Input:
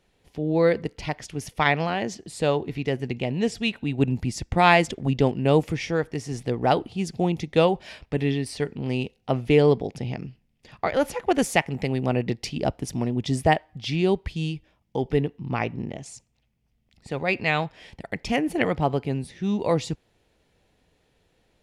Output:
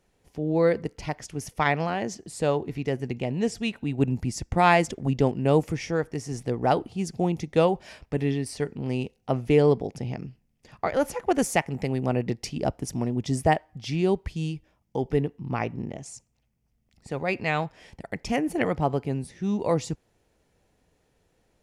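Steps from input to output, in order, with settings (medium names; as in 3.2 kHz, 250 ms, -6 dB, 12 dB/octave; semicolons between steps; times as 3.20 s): FFT filter 1.3 kHz 0 dB, 3.7 kHz -6 dB, 5.9 kHz +2 dB; trim -1.5 dB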